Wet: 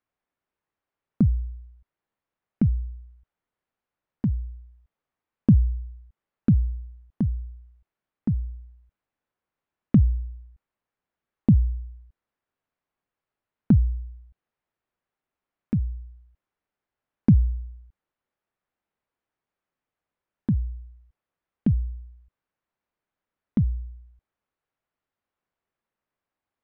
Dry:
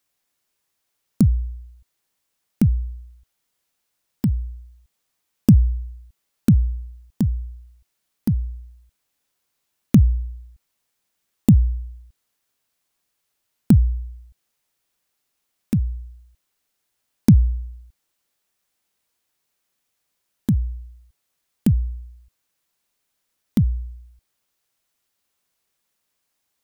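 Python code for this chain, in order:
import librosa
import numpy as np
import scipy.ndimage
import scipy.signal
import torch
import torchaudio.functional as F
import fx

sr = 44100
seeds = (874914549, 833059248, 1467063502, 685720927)

y = scipy.signal.sosfilt(scipy.signal.butter(2, 1700.0, 'lowpass', fs=sr, output='sos'), x)
y = y * 10.0 ** (-4.0 / 20.0)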